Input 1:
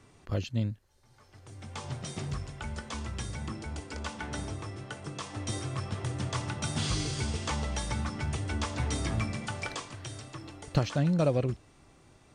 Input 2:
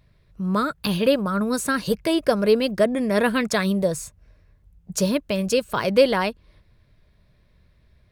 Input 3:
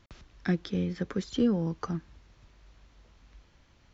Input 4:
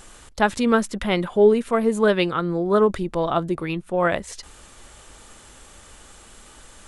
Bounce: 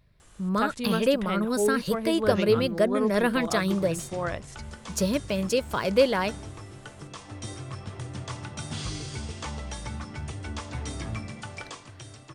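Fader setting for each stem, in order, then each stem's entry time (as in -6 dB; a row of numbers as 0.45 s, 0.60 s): -3.0 dB, -4.0 dB, -14.5 dB, -10.5 dB; 1.95 s, 0.00 s, 1.85 s, 0.20 s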